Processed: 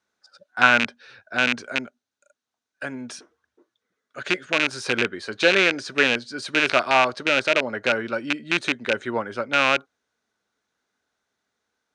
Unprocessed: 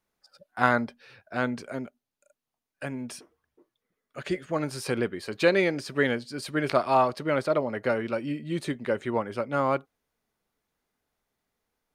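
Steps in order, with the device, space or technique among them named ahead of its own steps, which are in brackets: car door speaker with a rattle (rattle on loud lows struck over -33 dBFS, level -11 dBFS; cabinet simulation 99–8700 Hz, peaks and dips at 150 Hz -9 dB, 1.5 kHz +9 dB, 3.8 kHz +6 dB, 6.1 kHz +6 dB); trim +1.5 dB

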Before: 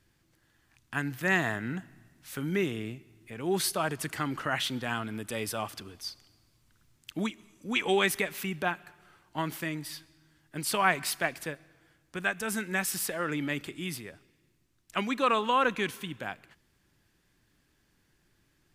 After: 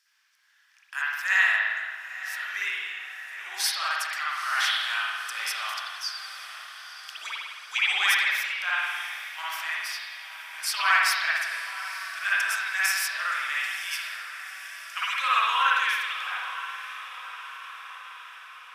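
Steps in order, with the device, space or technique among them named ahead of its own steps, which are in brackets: 14.01–15.10 s: high-pass 810 Hz; headphones lying on a table (high-pass 1.2 kHz 24 dB/octave; peaking EQ 5.4 kHz +10.5 dB 0.4 oct); echo that smears into a reverb 929 ms, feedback 61%, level -12.5 dB; spring tank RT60 1.3 s, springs 52 ms, chirp 40 ms, DRR -8 dB

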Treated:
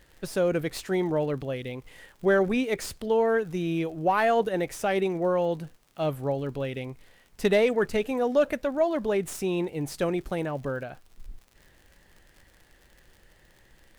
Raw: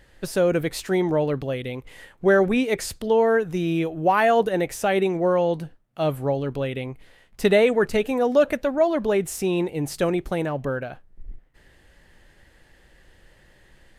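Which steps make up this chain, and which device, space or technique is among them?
record under a worn stylus (tracing distortion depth 0.033 ms; crackle 67 per s -38 dBFS; pink noise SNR 40 dB); trim -4.5 dB

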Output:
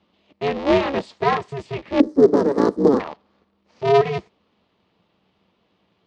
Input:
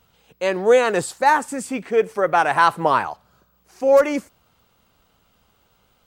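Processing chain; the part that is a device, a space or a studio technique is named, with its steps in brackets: ring modulator pedal into a guitar cabinet (polarity switched at an audio rate 140 Hz; cabinet simulation 85–4400 Hz, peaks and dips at 190 Hz +7 dB, 440 Hz +5 dB, 1.5 kHz -8 dB); 2.00–3.00 s: FFT filter 150 Hz 0 dB, 270 Hz +15 dB, 460 Hz +10 dB, 690 Hz -6 dB, 1.7 kHz -8 dB, 2.6 kHz -24 dB, 5.1 kHz 0 dB, 11 kHz +11 dB; trim -3.5 dB

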